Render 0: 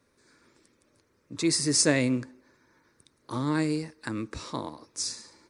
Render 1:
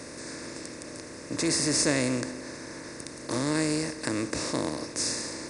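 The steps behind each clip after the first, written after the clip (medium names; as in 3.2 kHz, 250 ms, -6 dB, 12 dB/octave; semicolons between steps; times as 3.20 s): spectral levelling over time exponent 0.4; trim -5 dB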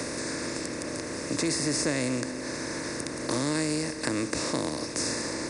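three bands compressed up and down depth 70%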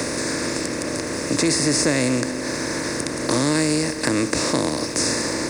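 waveshaping leveller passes 1; trim +4.5 dB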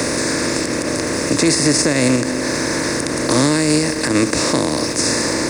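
in parallel at +2 dB: level held to a coarse grid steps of 10 dB; on the sum: loudness maximiser +5.5 dB; trim -4.5 dB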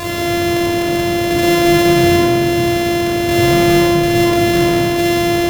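sorted samples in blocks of 128 samples; simulated room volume 3100 m³, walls mixed, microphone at 5.6 m; trim -7 dB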